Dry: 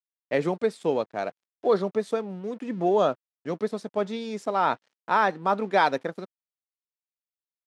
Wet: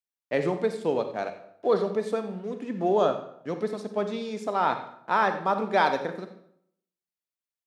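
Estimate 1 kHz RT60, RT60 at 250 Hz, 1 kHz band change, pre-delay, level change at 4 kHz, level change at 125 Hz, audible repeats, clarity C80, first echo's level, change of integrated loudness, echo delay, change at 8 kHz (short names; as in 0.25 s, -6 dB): 0.70 s, 0.70 s, -1.0 dB, 34 ms, -1.0 dB, -0.5 dB, 1, 11.5 dB, -16.0 dB, -1.0 dB, 90 ms, n/a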